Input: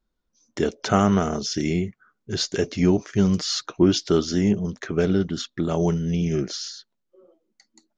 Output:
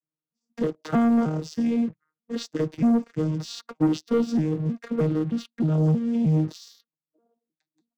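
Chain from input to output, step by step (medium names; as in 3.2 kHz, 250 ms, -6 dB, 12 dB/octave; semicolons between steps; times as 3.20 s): vocoder on a broken chord bare fifth, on D#3, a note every 312 ms; waveshaping leveller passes 2; trim -6 dB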